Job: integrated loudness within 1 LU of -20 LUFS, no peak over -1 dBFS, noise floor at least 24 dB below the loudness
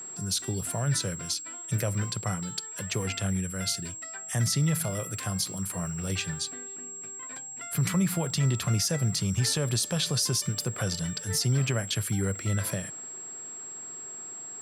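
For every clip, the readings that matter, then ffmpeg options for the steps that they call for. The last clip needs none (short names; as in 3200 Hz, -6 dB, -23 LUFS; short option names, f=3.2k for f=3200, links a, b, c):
steady tone 7600 Hz; tone level -38 dBFS; loudness -29.5 LUFS; peak -16.0 dBFS; loudness target -20.0 LUFS
-> -af "bandreject=f=7.6k:w=30"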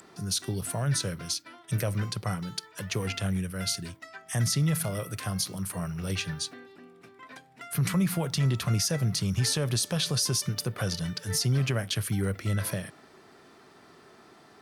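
steady tone none; loudness -29.0 LUFS; peak -16.5 dBFS; loudness target -20.0 LUFS
-> -af "volume=9dB"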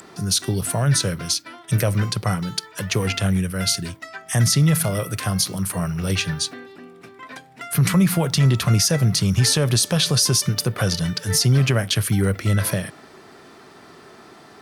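loudness -20.0 LUFS; peak -7.5 dBFS; noise floor -46 dBFS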